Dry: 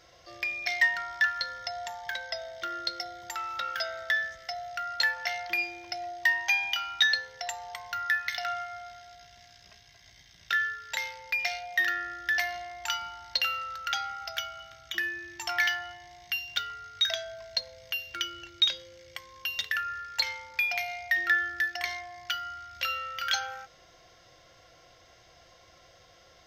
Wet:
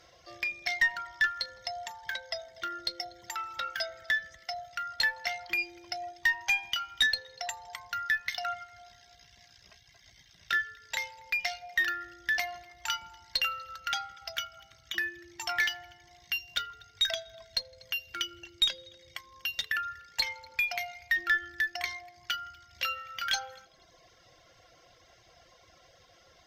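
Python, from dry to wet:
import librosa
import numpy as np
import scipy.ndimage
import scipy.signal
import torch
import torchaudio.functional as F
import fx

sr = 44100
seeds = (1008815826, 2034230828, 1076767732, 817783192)

y = fx.echo_heads(x, sr, ms=81, heads='all three', feedback_pct=41, wet_db=-22.0)
y = fx.dereverb_blind(y, sr, rt60_s=0.86)
y = fx.tube_stage(y, sr, drive_db=16.0, bias=0.2)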